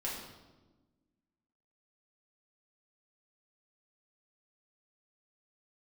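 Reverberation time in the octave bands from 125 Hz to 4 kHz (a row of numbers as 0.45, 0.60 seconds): 1.6, 1.9, 1.3, 1.1, 0.85, 0.90 seconds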